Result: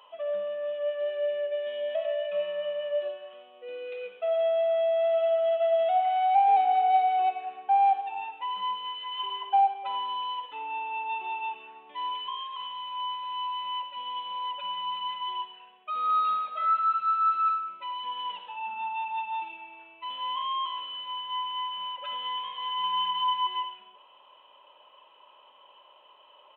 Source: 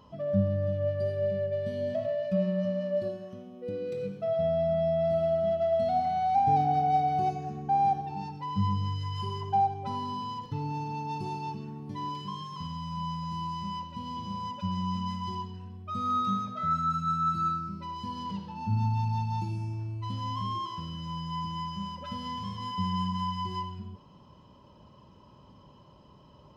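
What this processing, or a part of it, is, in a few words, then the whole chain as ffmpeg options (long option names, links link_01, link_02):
musical greeting card: -filter_complex "[0:a]aresample=8000,aresample=44100,highpass=frequency=580:width=0.5412,highpass=frequency=580:width=1.3066,equalizer=frequency=2700:width_type=o:width=0.49:gain=10,asettb=1/sr,asplit=3[link_01][link_02][link_03];[link_01]atrim=end=22.814[link_04];[link_02]atrim=start=22.81:end=23.47,asetpts=PTS-STARTPTS,afade=type=in:duration=0.004:curve=qsin,afade=type=out:start_time=0.656:duration=0.004:curve=qsin,asplit=2[link_05][link_06];[link_06]adelay=27,volume=-3dB[link_07];[link_05][link_07]amix=inputs=2:normalize=0,atrim=end_sample=29106[link_08];[link_03]atrim=start=23.466[link_09];[link_04][link_08]acrossfade=duration=0.004:curve1=hsin:curve2=qsin[link_10];[link_10][link_09]acrossfade=duration=0.004:curve1=qsin:curve2=hsin,volume=3.5dB"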